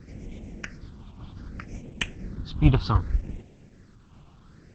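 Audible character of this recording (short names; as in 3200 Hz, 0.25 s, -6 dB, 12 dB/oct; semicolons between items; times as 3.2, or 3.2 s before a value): tremolo saw down 0.73 Hz, depth 40%; phasing stages 6, 0.65 Hz, lowest notch 500–1300 Hz; a quantiser's noise floor 12-bit, dither none; Opus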